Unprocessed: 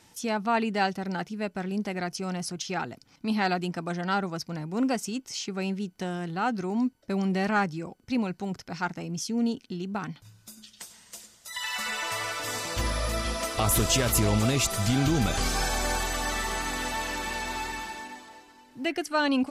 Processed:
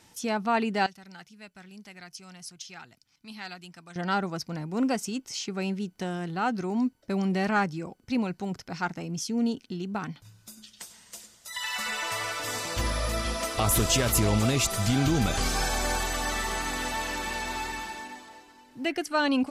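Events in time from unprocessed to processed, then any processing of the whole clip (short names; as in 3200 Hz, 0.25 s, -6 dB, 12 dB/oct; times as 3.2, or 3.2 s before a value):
0.86–3.96 passive tone stack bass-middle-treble 5-5-5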